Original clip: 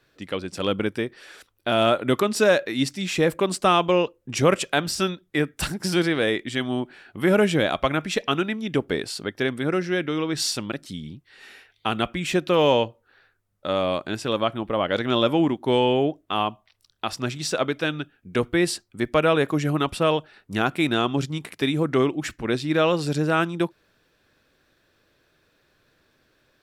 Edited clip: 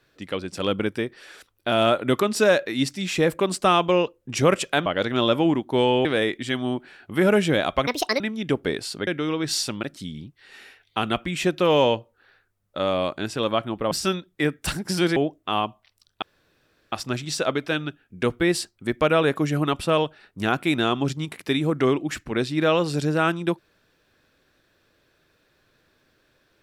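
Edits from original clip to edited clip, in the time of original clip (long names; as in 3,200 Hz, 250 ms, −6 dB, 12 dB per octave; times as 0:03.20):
0:04.86–0:06.11: swap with 0:14.80–0:15.99
0:07.93–0:08.45: play speed 157%
0:09.32–0:09.96: remove
0:17.05: splice in room tone 0.70 s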